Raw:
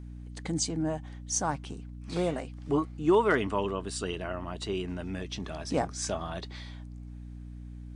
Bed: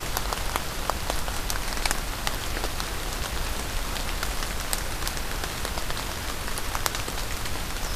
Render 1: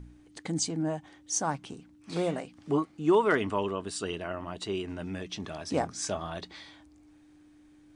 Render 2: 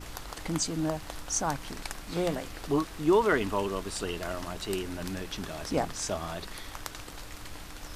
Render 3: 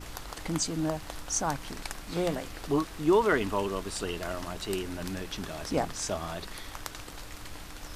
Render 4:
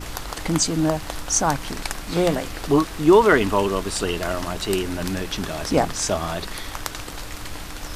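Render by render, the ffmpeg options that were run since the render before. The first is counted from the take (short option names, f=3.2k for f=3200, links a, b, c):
-af "bandreject=f=60:t=h:w=4,bandreject=f=120:t=h:w=4,bandreject=f=180:t=h:w=4,bandreject=f=240:t=h:w=4"
-filter_complex "[1:a]volume=-13dB[a];[0:a][a]amix=inputs=2:normalize=0"
-af anull
-af "volume=9.5dB"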